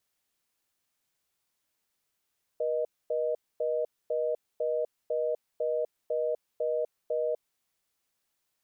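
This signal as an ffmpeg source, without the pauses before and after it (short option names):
-f lavfi -i "aevalsrc='0.0355*(sin(2*PI*480*t)+sin(2*PI*620*t))*clip(min(mod(t,0.5),0.25-mod(t,0.5))/0.005,0,1)':d=4.84:s=44100"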